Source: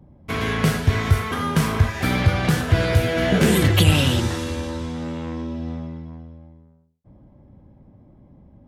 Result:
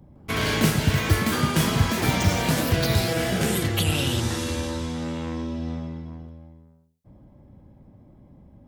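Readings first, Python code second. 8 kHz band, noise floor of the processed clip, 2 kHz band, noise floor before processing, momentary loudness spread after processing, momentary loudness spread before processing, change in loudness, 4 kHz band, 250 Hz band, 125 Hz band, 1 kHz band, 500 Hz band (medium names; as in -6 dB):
+2.0 dB, -53 dBFS, -2.5 dB, -52 dBFS, 10 LU, 14 LU, -3.0 dB, -1.0 dB, -2.5 dB, -4.5 dB, -2.0 dB, -3.5 dB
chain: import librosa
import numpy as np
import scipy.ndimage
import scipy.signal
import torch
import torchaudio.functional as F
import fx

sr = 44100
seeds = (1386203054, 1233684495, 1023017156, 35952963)

y = fx.high_shelf(x, sr, hz=3600.0, db=7.5)
y = fx.rider(y, sr, range_db=4, speed_s=0.5)
y = fx.echo_pitch(y, sr, ms=158, semitones=6, count=2, db_per_echo=-3.0)
y = y * 10.0 ** (-5.0 / 20.0)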